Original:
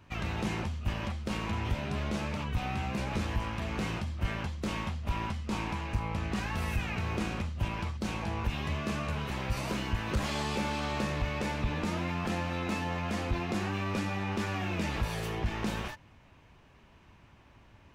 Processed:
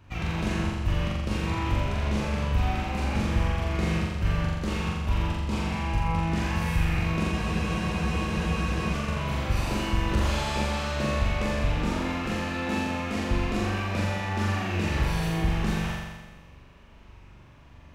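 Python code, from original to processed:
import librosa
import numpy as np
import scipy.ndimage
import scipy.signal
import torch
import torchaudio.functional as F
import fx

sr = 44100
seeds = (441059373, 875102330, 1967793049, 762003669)

y = fx.low_shelf(x, sr, hz=90.0, db=7.5)
y = fx.room_flutter(y, sr, wall_m=7.3, rt60_s=1.3)
y = fx.spec_freeze(y, sr, seeds[0], at_s=7.33, hold_s=1.6)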